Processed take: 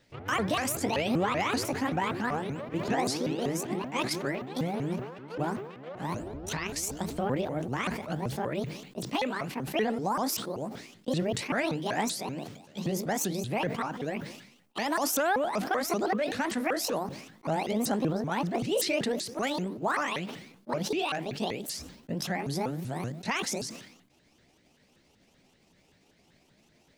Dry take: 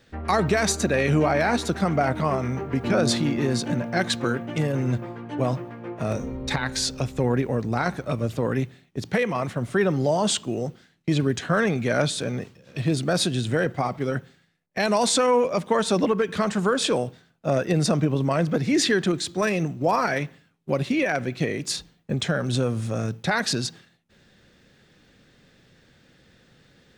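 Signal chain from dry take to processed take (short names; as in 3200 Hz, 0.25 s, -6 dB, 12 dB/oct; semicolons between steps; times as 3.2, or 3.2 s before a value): repeated pitch sweeps +10 st, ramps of 0.192 s; sustainer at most 71 dB/s; gain -6.5 dB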